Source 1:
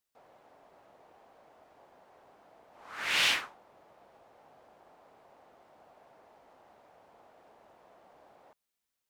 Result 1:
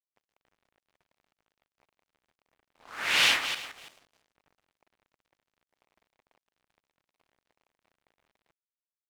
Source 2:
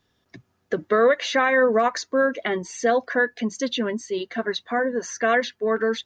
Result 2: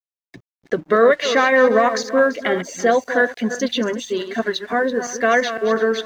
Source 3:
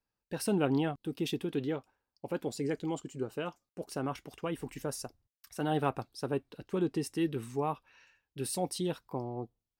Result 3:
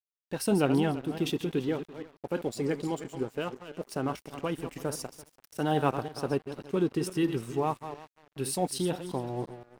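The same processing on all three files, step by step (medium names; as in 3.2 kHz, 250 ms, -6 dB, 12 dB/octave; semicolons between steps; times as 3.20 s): backward echo that repeats 169 ms, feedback 44%, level -9.5 dB; crossover distortion -52.5 dBFS; trim +4 dB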